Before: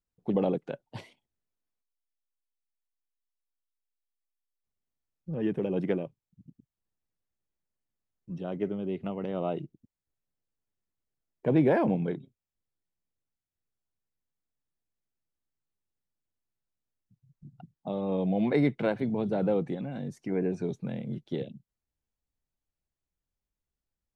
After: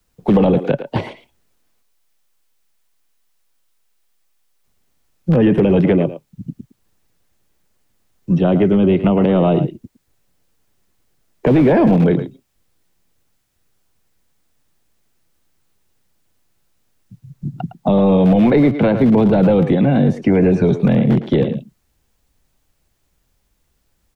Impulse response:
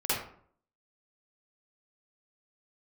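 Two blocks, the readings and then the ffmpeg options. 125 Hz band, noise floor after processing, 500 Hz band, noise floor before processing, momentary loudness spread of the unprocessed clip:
+18.0 dB, −66 dBFS, +14.5 dB, below −85 dBFS, 16 LU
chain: -filter_complex "[0:a]acrossover=split=110|720|2000[link_01][link_02][link_03][link_04];[link_01]aeval=exprs='(mod(150*val(0)+1,2)-1)/150':channel_layout=same[link_05];[link_05][link_02][link_03][link_04]amix=inputs=4:normalize=0,acrossover=split=260|1000|2900[link_06][link_07][link_08][link_09];[link_06]acompressor=threshold=-36dB:ratio=4[link_10];[link_07]acompressor=threshold=-38dB:ratio=4[link_11];[link_08]acompressor=threshold=-57dB:ratio=4[link_12];[link_09]acompressor=threshold=-58dB:ratio=4[link_13];[link_10][link_11][link_12][link_13]amix=inputs=4:normalize=0,asplit=2[link_14][link_15];[link_15]adelay=110,highpass=300,lowpass=3400,asoftclip=type=hard:threshold=-31dB,volume=-11dB[link_16];[link_14][link_16]amix=inputs=2:normalize=0,apsyclip=30.5dB,acrossover=split=3600[link_17][link_18];[link_18]acompressor=threshold=-47dB:ratio=4:attack=1:release=60[link_19];[link_17][link_19]amix=inputs=2:normalize=0,volume=-6.5dB"

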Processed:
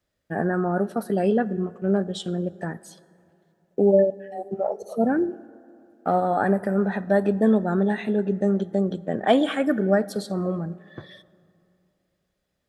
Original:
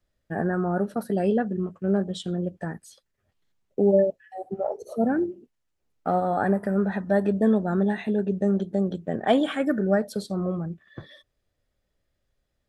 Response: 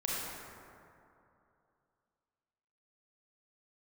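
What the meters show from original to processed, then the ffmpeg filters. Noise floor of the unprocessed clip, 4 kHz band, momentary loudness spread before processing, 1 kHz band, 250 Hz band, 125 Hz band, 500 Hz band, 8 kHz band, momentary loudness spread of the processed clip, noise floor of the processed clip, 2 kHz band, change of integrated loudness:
−77 dBFS, +2.5 dB, 11 LU, +2.5 dB, +1.0 dB, +0.5 dB, +2.0 dB, can't be measured, 13 LU, −76 dBFS, +2.5 dB, +1.5 dB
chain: -filter_complex "[0:a]highpass=frequency=130:poles=1,asplit=2[link_01][link_02];[1:a]atrim=start_sample=2205[link_03];[link_02][link_03]afir=irnorm=-1:irlink=0,volume=-23.5dB[link_04];[link_01][link_04]amix=inputs=2:normalize=0,volume=2dB"

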